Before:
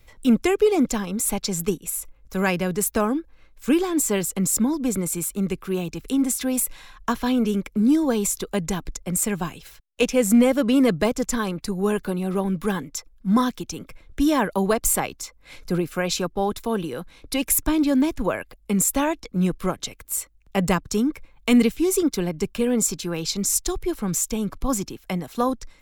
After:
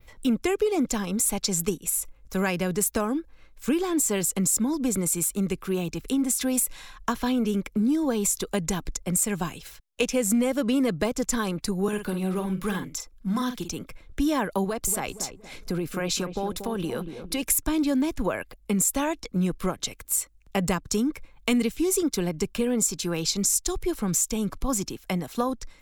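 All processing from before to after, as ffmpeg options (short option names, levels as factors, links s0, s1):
-filter_complex "[0:a]asettb=1/sr,asplit=3[s0][s1][s2];[s0]atrim=end=11.884[s3];[s1]atrim=start=11.88:end=13.73,asetpts=PTS-STARTPTS,afade=t=in:d=0.004:c=qsin,afade=t=out:st=1.846:d=0.004:c=qsin,acrossover=split=470|1100[s4][s5][s6];[s4]acompressor=threshold=0.0501:ratio=4[s7];[s5]acompressor=threshold=0.01:ratio=4[s8];[s6]acompressor=threshold=0.0282:ratio=4[s9];[s7][s8][s9]amix=inputs=3:normalize=0,aeval=exprs='clip(val(0),-1,0.0944)':c=same,asplit=2[s10][s11];[s11]adelay=48,volume=0.398[s12];[s10][s12]amix=inputs=2:normalize=0,atrim=end_sample=81585[s13];[s2]atrim=start=13.726[s14];[s3][s13]acrossfade=d=0.004:c1=hsin:c2=qsin[s15];[s15][s14]acrossfade=d=0.004:c1=qsin:c2=hsin,asettb=1/sr,asplit=3[s16][s17][s18];[s16]atrim=end=14.644[s19];[s17]atrim=start=14.64:end=17.43,asetpts=PTS-STARTPTS,afade=t=in:d=0.004:c=qsin,afade=t=out:st=2.786:d=0.004:c=qsin,acompressor=threshold=0.0708:ratio=6:attack=3.2:release=140:knee=1:detection=peak,asplit=2[s20][s21];[s21]adelay=234,lowpass=f=810:p=1,volume=0.422,asplit=2[s22][s23];[s23]adelay=234,lowpass=f=810:p=1,volume=0.4,asplit=2[s24][s25];[s25]adelay=234,lowpass=f=810:p=1,volume=0.4,asplit=2[s26][s27];[s27]adelay=234,lowpass=f=810:p=1,volume=0.4,asplit=2[s28][s29];[s29]adelay=234,lowpass=f=810:p=1,volume=0.4[s30];[s20][s22][s24][s26][s28][s30]amix=inputs=6:normalize=0,atrim=end_sample=123039[s31];[s18]atrim=start=17.426[s32];[s19][s31]acrossfade=d=0.004:c1=hsin:c2=qsin[s33];[s33][s32]acrossfade=d=0.004:c1=qsin:c2=hsin,adynamicequalizer=threshold=0.0178:dfrequency=7800:dqfactor=0.7:tfrequency=7800:tqfactor=0.7:attack=5:release=100:ratio=0.375:range=2.5:mode=boostabove:tftype=bell,acompressor=threshold=0.0794:ratio=3"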